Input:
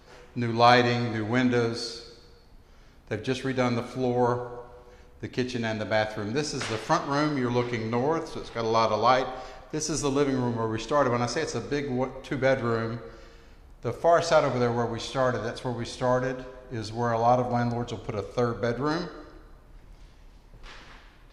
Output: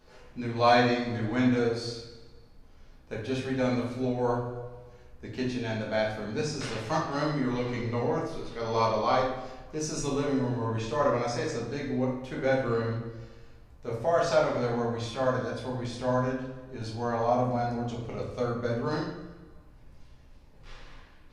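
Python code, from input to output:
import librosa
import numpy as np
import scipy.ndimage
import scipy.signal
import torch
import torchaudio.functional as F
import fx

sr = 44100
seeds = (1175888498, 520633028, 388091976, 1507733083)

y = fx.room_shoebox(x, sr, seeds[0], volume_m3=140.0, walls='mixed', distance_m=1.4)
y = y * librosa.db_to_amplitude(-9.0)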